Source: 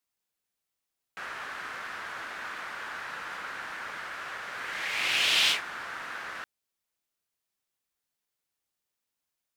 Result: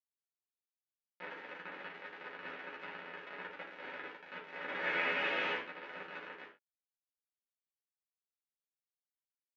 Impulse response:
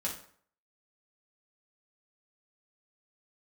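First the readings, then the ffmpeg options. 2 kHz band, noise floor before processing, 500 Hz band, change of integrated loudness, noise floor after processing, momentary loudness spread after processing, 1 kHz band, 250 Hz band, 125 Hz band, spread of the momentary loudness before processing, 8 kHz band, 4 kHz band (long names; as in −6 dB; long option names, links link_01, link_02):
−6.5 dB, below −85 dBFS, +2.5 dB, −9.0 dB, below −85 dBFS, 15 LU, −6.5 dB, +1.0 dB, −3.5 dB, 16 LU, below −30 dB, −17.5 dB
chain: -filter_complex "[0:a]alimiter=limit=-21dB:level=0:latency=1:release=136,aeval=exprs='0.0891*(cos(1*acos(clip(val(0)/0.0891,-1,1)))-cos(1*PI/2))+0.0251*(cos(2*acos(clip(val(0)/0.0891,-1,1)))-cos(2*PI/2))+0.00355*(cos(3*acos(clip(val(0)/0.0891,-1,1)))-cos(3*PI/2))+0.00224*(cos(6*acos(clip(val(0)/0.0891,-1,1)))-cos(6*PI/2))+0.00126*(cos(7*acos(clip(val(0)/0.0891,-1,1)))-cos(7*PI/2))':channel_layout=same,aresample=16000,acrusher=bits=4:mix=0:aa=0.000001,aresample=44100,highpass=390,equalizer=frequency=390:width_type=q:width=4:gain=5,equalizer=frequency=690:width_type=q:width=4:gain=-5,equalizer=frequency=1100:width_type=q:width=4:gain=-8,lowpass=frequency=2200:width=0.5412,lowpass=frequency=2200:width=1.3066,asplit=2[link_01][link_02];[link_02]adelay=12,volume=-5.5dB[link_03];[link_01][link_03]amix=inputs=2:normalize=0[link_04];[1:a]atrim=start_sample=2205,atrim=end_sample=6174[link_05];[link_04][link_05]afir=irnorm=-1:irlink=0"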